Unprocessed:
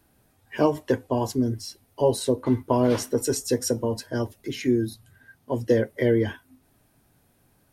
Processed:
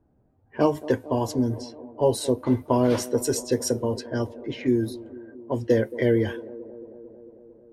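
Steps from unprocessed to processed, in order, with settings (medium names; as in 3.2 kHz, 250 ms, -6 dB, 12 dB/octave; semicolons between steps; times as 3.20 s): feedback echo behind a band-pass 224 ms, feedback 74%, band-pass 450 Hz, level -16 dB; level-controlled noise filter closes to 640 Hz, open at -21 dBFS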